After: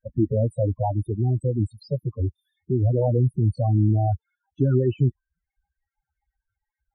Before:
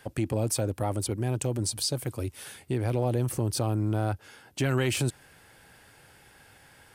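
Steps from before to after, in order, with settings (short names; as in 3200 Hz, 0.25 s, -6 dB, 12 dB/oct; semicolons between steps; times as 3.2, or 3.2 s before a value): per-bin expansion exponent 2; in parallel at 0 dB: limiter -29.5 dBFS, peak gain reduction 10.5 dB; on the sum: loudest bins only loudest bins 8; polynomial smoothing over 65 samples; gain +7.5 dB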